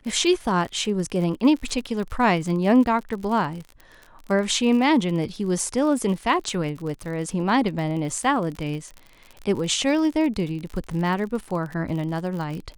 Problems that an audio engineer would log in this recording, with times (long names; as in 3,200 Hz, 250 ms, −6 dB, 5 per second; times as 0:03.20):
surface crackle 47 per second −30 dBFS